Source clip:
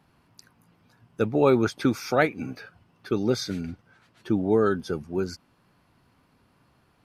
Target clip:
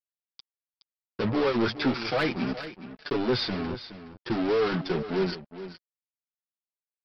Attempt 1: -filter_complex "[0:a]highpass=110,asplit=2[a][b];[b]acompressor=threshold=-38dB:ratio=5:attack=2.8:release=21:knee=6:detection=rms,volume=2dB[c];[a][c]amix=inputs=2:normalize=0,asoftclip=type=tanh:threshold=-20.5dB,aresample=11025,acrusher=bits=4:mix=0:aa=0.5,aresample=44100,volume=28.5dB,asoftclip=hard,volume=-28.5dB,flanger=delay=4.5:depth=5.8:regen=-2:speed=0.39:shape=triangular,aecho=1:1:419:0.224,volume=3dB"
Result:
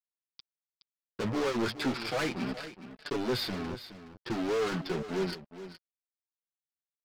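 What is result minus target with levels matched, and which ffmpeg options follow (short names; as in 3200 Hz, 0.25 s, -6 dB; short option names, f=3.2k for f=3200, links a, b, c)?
overloaded stage: distortion +29 dB; compressor: peak gain reduction +5.5 dB
-filter_complex "[0:a]highpass=110,asplit=2[a][b];[b]acompressor=threshold=-31dB:ratio=5:attack=2.8:release=21:knee=6:detection=rms,volume=2dB[c];[a][c]amix=inputs=2:normalize=0,asoftclip=type=tanh:threshold=-20.5dB,aresample=11025,acrusher=bits=4:mix=0:aa=0.5,aresample=44100,volume=21dB,asoftclip=hard,volume=-21dB,flanger=delay=4.5:depth=5.8:regen=-2:speed=0.39:shape=triangular,aecho=1:1:419:0.224,volume=3dB"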